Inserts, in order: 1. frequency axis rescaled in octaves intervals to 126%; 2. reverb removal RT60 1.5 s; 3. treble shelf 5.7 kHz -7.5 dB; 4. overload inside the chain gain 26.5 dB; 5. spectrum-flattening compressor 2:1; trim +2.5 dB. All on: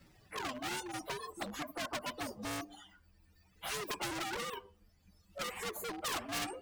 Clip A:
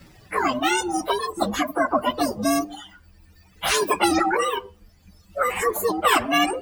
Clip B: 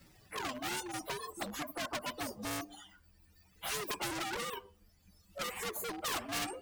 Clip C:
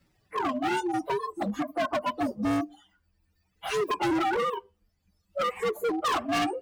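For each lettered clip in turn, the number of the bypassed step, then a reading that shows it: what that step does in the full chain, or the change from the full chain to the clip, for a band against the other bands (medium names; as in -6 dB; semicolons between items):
4, distortion -5 dB; 3, 8 kHz band +1.5 dB; 5, 8 kHz band -12.5 dB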